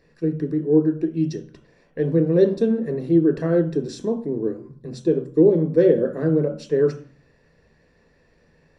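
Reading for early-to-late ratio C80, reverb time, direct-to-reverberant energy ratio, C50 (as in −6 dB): 15.0 dB, 0.45 s, 4.0 dB, 11.0 dB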